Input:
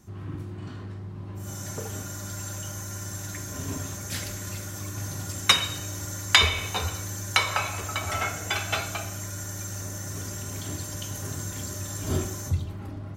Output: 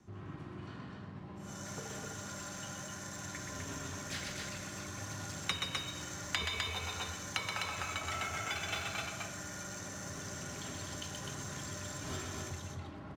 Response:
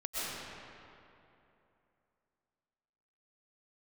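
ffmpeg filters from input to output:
-filter_complex "[0:a]asplit=2[s0][s1];[s1]aecho=0:1:125.4|253.6:0.562|0.631[s2];[s0][s2]amix=inputs=2:normalize=0,adynamicsmooth=sensitivity=6.5:basefreq=5100,lowshelf=f=80:g=-11,acrossover=split=190|530|1200|5000[s3][s4][s5][s6][s7];[s3]acompressor=threshold=0.01:ratio=4[s8];[s4]acompressor=threshold=0.00398:ratio=4[s9];[s5]acompressor=threshold=0.00501:ratio=4[s10];[s6]acompressor=threshold=0.02:ratio=4[s11];[s7]acompressor=threshold=0.00631:ratio=4[s12];[s8][s9][s10][s11][s12]amix=inputs=5:normalize=0,volume=0.631"

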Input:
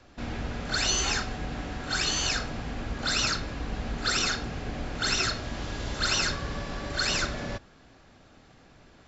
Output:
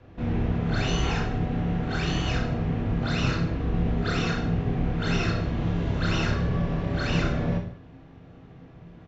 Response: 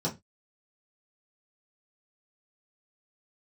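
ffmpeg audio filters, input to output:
-filter_complex "[0:a]lowpass=3100,equalizer=f=75:w=0.31:g=13,aecho=1:1:30|64.5|104.2|149.8|202.3:0.631|0.398|0.251|0.158|0.1,asplit=2[s0][s1];[1:a]atrim=start_sample=2205[s2];[s1][s2]afir=irnorm=-1:irlink=0,volume=0.2[s3];[s0][s3]amix=inputs=2:normalize=0,volume=0.708"

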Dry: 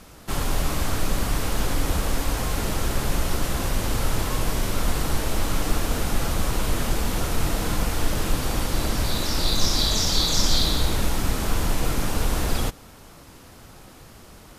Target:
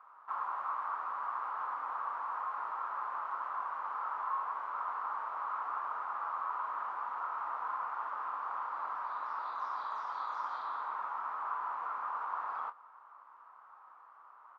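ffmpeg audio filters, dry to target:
-filter_complex "[0:a]asuperpass=centerf=1100:order=4:qfactor=2.9,asplit=2[s0][s1];[s1]adelay=25,volume=0.282[s2];[s0][s2]amix=inputs=2:normalize=0,volume=1.19"

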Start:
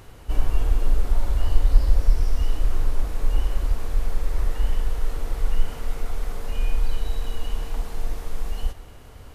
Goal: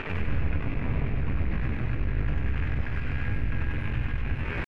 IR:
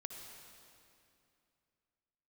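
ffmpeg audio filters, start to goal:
-filter_complex "[0:a]asoftclip=type=tanh:threshold=0.133,lowshelf=f=600:t=q:w=1.5:g=8,aeval=exprs='max(val(0),0)':c=same,bandreject=f=50:t=h:w=6,bandreject=f=100:t=h:w=6,asetrate=88200,aresample=44100,acompressor=threshold=0.0355:ratio=5,lowpass=f=1400:t=q:w=5,asetrate=78577,aresample=44100,atempo=0.561231,alimiter=level_in=2:limit=0.0631:level=0:latency=1:release=49,volume=0.501,asplit=2[s0][s1];[s1]aemphasis=mode=production:type=50kf[s2];[1:a]atrim=start_sample=2205,adelay=96[s3];[s2][s3]afir=irnorm=-1:irlink=0,volume=1[s4];[s0][s4]amix=inputs=2:normalize=0,volume=2.82"

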